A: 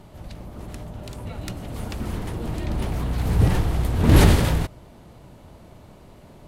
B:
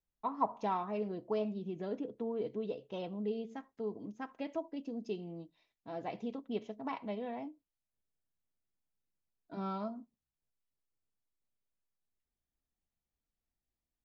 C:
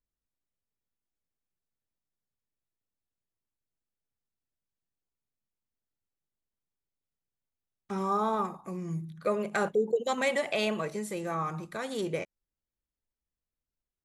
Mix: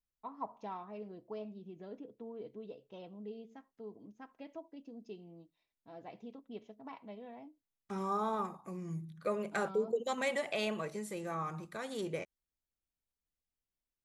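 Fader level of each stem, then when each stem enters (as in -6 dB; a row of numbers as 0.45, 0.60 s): off, -9.0 dB, -6.0 dB; off, 0.00 s, 0.00 s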